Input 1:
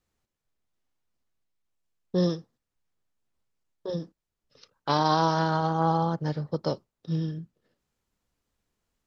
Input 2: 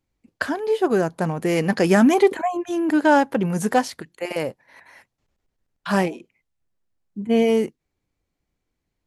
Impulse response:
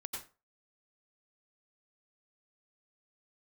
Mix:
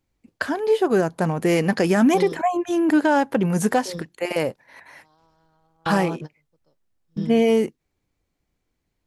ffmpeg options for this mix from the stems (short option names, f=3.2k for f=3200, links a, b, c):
-filter_complex "[0:a]highpass=120,aeval=exprs='sgn(val(0))*max(abs(val(0))-0.00251,0)':c=same,volume=0dB[a];[1:a]volume=2.5dB,asplit=2[b][c];[c]apad=whole_len=399888[d];[a][d]sidechaingate=range=-38dB:threshold=-37dB:ratio=16:detection=peak[e];[e][b]amix=inputs=2:normalize=0,alimiter=limit=-9.5dB:level=0:latency=1:release=219"